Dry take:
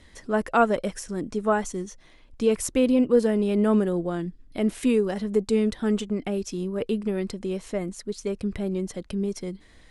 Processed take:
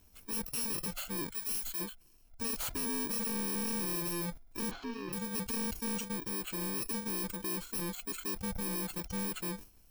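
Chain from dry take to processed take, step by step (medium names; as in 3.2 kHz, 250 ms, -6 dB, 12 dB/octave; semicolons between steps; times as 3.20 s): bit-reversed sample order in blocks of 64 samples; spectral noise reduction 11 dB; 1.30–1.80 s: amplifier tone stack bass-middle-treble 10-0-10; 6.06–6.62 s: compression 2:1, threshold -36 dBFS, peak gain reduction 6.5 dB; overload inside the chain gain 35 dB; 4.71–5.13 s: distance through air 250 m; decay stretcher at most 140 dB/s; trim +1 dB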